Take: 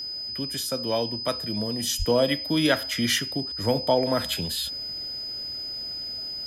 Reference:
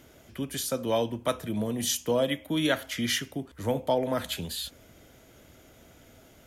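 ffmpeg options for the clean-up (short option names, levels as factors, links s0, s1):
-filter_complex "[0:a]bandreject=f=5000:w=30,asplit=3[s0][s1][s2];[s0]afade=t=out:st=1.98:d=0.02[s3];[s1]highpass=f=140:w=0.5412,highpass=f=140:w=1.3066,afade=t=in:st=1.98:d=0.02,afade=t=out:st=2.1:d=0.02[s4];[s2]afade=t=in:st=2.1:d=0.02[s5];[s3][s4][s5]amix=inputs=3:normalize=0,asetnsamples=n=441:p=0,asendcmd='2 volume volume -4dB',volume=1"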